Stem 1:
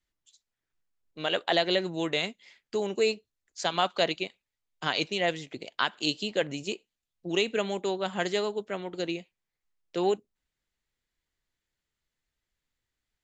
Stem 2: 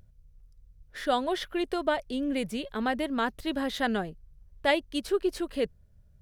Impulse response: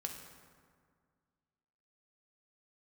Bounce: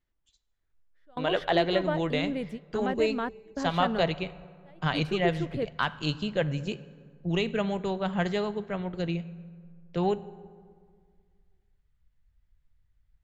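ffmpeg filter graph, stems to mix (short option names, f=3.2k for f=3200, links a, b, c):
-filter_complex "[0:a]asubboost=boost=11.5:cutoff=96,asoftclip=type=hard:threshold=-13.5dB,volume=1dB,asplit=3[a][b][c];[b]volume=-7.5dB[d];[1:a]volume=-2dB[e];[c]apad=whole_len=273919[f];[e][f]sidechaingate=range=-30dB:threshold=-55dB:ratio=16:detection=peak[g];[2:a]atrim=start_sample=2205[h];[d][h]afir=irnorm=-1:irlink=0[i];[a][g][i]amix=inputs=3:normalize=0,lowpass=f=1.4k:p=1"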